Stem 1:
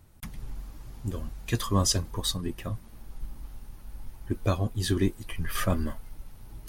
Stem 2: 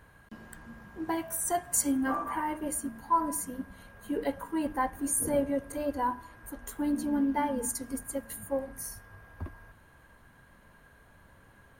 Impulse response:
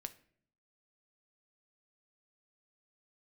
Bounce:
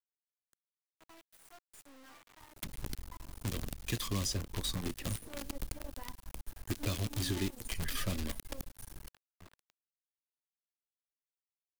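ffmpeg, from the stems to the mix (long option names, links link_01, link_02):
-filter_complex "[0:a]adelay=2400,volume=1dB[link_01];[1:a]adynamicequalizer=threshold=0.00355:dfrequency=3900:dqfactor=0.7:tfrequency=3900:tqfactor=0.7:attack=5:release=100:ratio=0.375:range=2:mode=cutabove:tftype=highshelf,volume=-12dB,afade=type=in:start_time=4.76:duration=0.34:silence=0.251189,asplit=2[link_02][link_03];[link_03]volume=-21.5dB[link_04];[2:a]atrim=start_sample=2205[link_05];[link_04][link_05]afir=irnorm=-1:irlink=0[link_06];[link_01][link_02][link_06]amix=inputs=3:normalize=0,acrusher=bits=6:dc=4:mix=0:aa=0.000001,lowshelf=frequency=480:gain=-4,acrossover=split=430|2400|5100[link_07][link_08][link_09][link_10];[link_07]acompressor=threshold=-33dB:ratio=4[link_11];[link_08]acompressor=threshold=-50dB:ratio=4[link_12];[link_09]acompressor=threshold=-41dB:ratio=4[link_13];[link_10]acompressor=threshold=-42dB:ratio=4[link_14];[link_11][link_12][link_13][link_14]amix=inputs=4:normalize=0"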